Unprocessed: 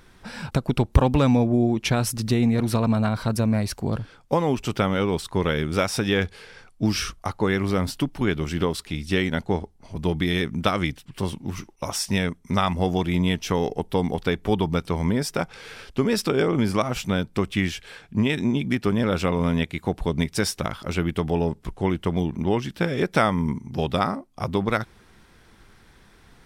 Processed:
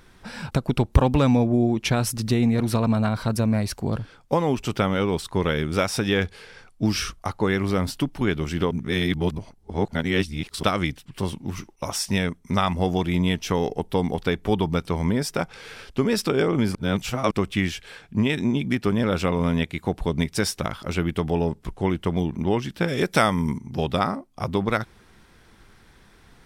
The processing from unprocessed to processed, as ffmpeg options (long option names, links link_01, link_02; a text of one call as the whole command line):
ffmpeg -i in.wav -filter_complex "[0:a]asettb=1/sr,asplit=3[link_01][link_02][link_03];[link_01]atrim=end=22.884[link_04];[link_02]atrim=start=22.88:end=23.58,asetpts=PTS-STARTPTS,afade=type=in:duration=0.004:curve=qsin,afade=type=out:start_time=0.696:duration=0.004:curve=qsin,highshelf=frequency=4000:gain=9.5[link_05];[link_03]atrim=start=23.576[link_06];[link_04][link_05]acrossfade=duration=0.004:curve1=hsin:curve2=qsin[link_07];[link_07][link_06]acrossfade=duration=0.004:curve1=qsin:curve2=hsin,asplit=5[link_08][link_09][link_10][link_11][link_12];[link_08]atrim=end=8.712[link_13];[link_09]atrim=start=8.708:end=10.632,asetpts=PTS-STARTPTS,areverse[link_14];[link_10]atrim=start=10.628:end=16.752[link_15];[link_11]atrim=start=16.748:end=17.312,asetpts=PTS-STARTPTS,areverse[link_16];[link_12]atrim=start=17.308[link_17];[link_13][link_14]acrossfade=duration=0.004:curve1=hsin:curve2=hsin[link_18];[link_18][link_15]acrossfade=duration=0.004:curve1=hsin:curve2=hsin[link_19];[link_19][link_16]acrossfade=duration=0.004:curve1=hsin:curve2=hsin[link_20];[link_20][link_17]acrossfade=duration=0.004:curve1=hsin:curve2=hsin" out.wav